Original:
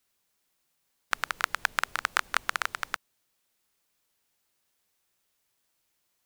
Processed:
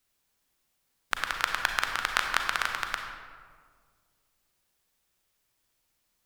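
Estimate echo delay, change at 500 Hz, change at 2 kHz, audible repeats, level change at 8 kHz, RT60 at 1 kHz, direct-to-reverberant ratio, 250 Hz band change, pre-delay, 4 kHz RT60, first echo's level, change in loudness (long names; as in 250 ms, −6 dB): no echo audible, +1.0 dB, +1.0 dB, no echo audible, +0.5 dB, 1.7 s, 3.5 dB, +2.5 dB, 33 ms, 0.95 s, no echo audible, +1.5 dB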